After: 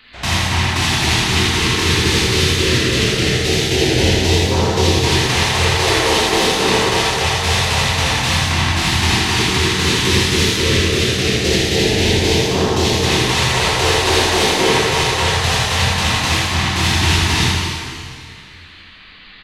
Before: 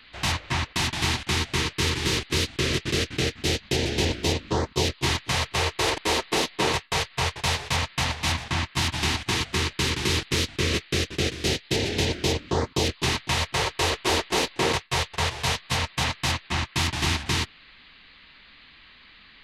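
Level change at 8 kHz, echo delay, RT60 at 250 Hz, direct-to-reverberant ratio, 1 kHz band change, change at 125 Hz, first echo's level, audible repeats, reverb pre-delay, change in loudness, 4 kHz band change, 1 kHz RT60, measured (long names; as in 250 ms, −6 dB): +10.5 dB, 80 ms, 2.3 s, −6.5 dB, +10.0 dB, +11.0 dB, −4.5 dB, 1, 26 ms, +10.5 dB, +10.5 dB, 2.1 s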